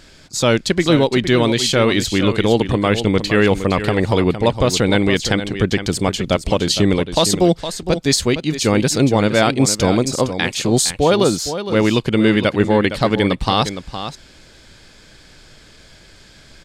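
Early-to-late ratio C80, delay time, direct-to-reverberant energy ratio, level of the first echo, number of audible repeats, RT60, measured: none, 0.462 s, none, -10.5 dB, 1, none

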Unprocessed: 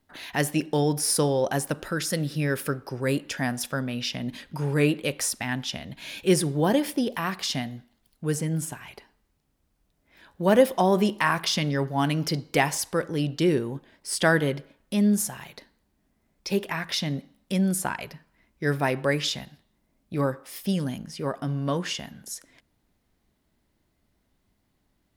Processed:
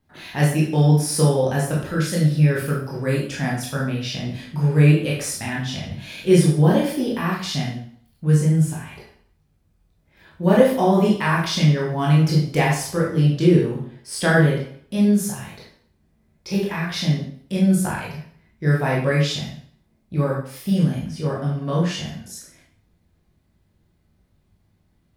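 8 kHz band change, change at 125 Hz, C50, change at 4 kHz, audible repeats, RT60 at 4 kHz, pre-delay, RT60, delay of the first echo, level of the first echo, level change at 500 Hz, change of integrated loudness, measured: 0.0 dB, +11.0 dB, 3.5 dB, +1.0 dB, none, 0.50 s, 16 ms, 0.55 s, none, none, +4.0 dB, +6.0 dB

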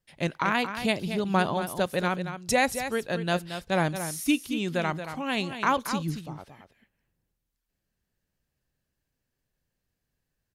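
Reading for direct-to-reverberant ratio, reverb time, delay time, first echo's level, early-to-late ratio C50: none, none, 0.227 s, -9.5 dB, none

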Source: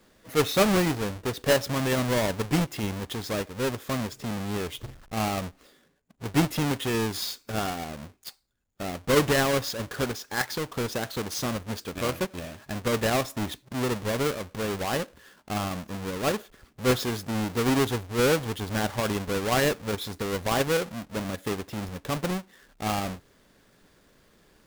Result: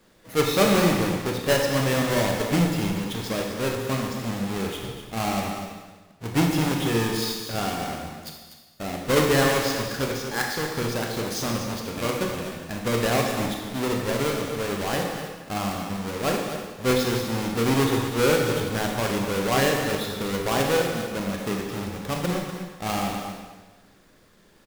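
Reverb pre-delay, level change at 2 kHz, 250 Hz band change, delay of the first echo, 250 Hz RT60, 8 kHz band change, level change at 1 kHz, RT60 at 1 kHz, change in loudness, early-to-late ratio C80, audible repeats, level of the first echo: 22 ms, +3.0 dB, +3.0 dB, 0.245 s, 1.3 s, +3.0 dB, +3.0 dB, 1.3 s, +3.0 dB, 3.5 dB, 1, -10.0 dB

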